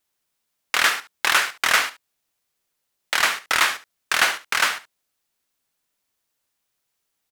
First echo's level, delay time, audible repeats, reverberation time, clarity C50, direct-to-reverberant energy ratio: −15.5 dB, 71 ms, 1, no reverb audible, no reverb audible, no reverb audible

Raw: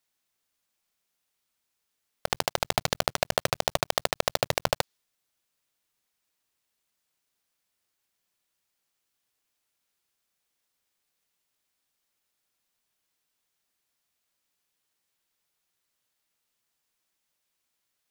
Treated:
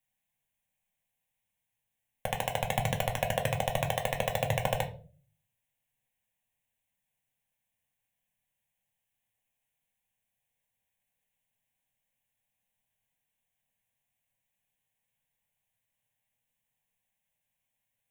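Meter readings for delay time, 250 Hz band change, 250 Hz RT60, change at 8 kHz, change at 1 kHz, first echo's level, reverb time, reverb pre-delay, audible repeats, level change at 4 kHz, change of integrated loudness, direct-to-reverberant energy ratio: no echo audible, 0.0 dB, 0.55 s, −7.0 dB, −2.0 dB, no echo audible, 0.40 s, 4 ms, no echo audible, −8.0 dB, −3.0 dB, 3.0 dB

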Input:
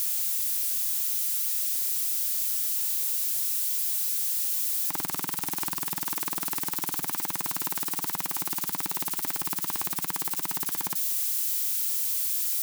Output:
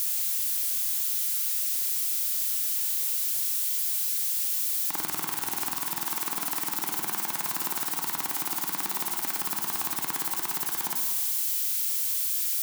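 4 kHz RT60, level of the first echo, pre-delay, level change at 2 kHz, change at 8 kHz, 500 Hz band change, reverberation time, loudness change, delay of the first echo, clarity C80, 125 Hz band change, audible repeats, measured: 1.3 s, no echo audible, 23 ms, +2.0 dB, 0.0 dB, +1.0 dB, 1.5 s, 0.0 dB, no echo audible, 5.5 dB, −3.5 dB, no echo audible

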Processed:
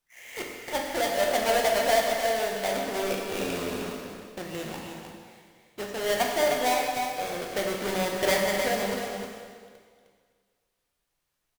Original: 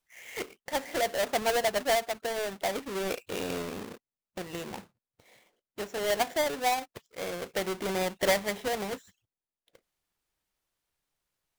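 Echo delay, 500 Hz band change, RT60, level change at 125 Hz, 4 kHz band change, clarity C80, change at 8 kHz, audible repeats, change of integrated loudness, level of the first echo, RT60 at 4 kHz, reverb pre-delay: 308 ms, +4.0 dB, 1.8 s, +3.5 dB, +3.5 dB, 1.5 dB, +3.5 dB, 1, +3.5 dB, −7.0 dB, 1.7 s, 5 ms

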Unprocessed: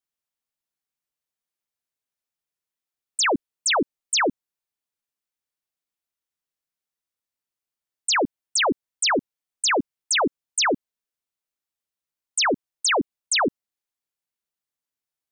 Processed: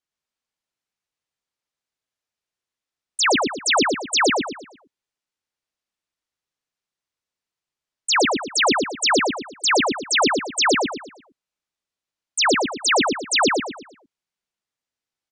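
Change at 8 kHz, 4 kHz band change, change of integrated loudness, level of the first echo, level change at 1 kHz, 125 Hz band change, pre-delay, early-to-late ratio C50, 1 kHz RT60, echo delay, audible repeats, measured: +1.5 dB, +4.0 dB, +3.5 dB, −3.5 dB, +4.5 dB, +4.5 dB, no reverb audible, no reverb audible, no reverb audible, 115 ms, 4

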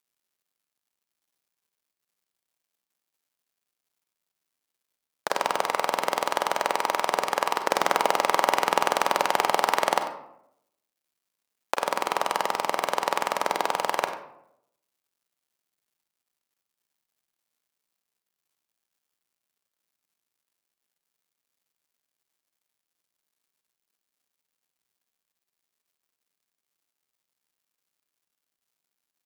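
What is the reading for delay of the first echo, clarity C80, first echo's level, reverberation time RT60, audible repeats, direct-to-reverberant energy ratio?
95 ms, 10.0 dB, −15.0 dB, 0.80 s, 1, 6.5 dB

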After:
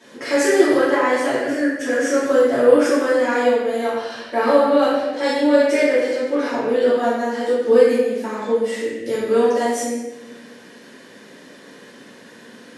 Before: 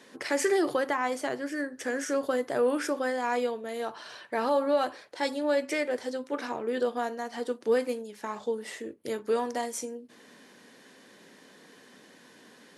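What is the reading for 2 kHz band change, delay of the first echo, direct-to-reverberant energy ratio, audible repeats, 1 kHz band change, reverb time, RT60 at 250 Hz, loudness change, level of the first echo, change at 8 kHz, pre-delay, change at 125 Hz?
+11.0 dB, no echo audible, −12.0 dB, no echo audible, +9.0 dB, 1.1 s, 1.6 s, +12.0 dB, no echo audible, +8.0 dB, 3 ms, can't be measured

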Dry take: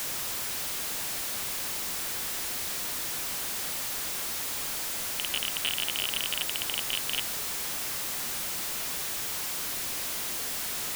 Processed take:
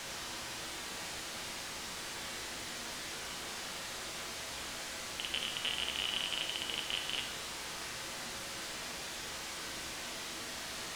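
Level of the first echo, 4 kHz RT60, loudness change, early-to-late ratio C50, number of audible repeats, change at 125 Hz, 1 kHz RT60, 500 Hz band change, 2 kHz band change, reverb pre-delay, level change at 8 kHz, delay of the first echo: no echo audible, 0.95 s, −9.0 dB, 7.0 dB, no echo audible, −4.5 dB, 1.0 s, −3.0 dB, −4.0 dB, 6 ms, −10.5 dB, no echo audible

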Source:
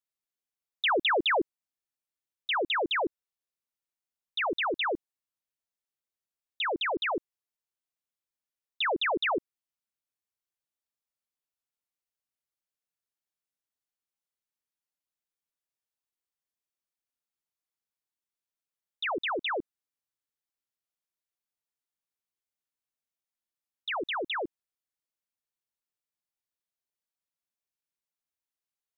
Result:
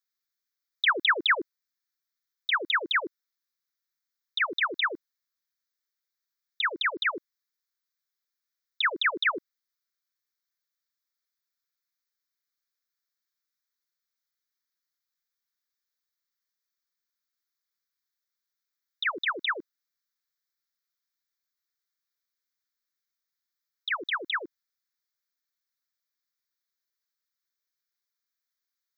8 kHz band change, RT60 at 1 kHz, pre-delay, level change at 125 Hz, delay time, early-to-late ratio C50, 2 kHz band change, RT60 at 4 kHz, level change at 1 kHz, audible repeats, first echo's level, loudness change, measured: can't be measured, no reverb audible, no reverb audible, can't be measured, no echo audible, no reverb audible, +5.0 dB, no reverb audible, −0.5 dB, no echo audible, no echo audible, +2.5 dB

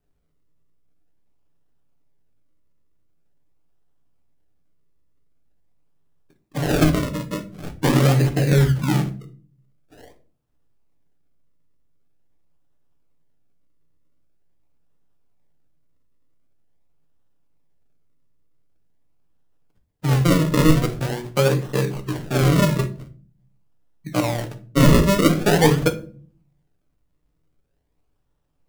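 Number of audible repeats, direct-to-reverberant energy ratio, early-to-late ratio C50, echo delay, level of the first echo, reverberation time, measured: no echo audible, 6.5 dB, 14.5 dB, no echo audible, no echo audible, 0.45 s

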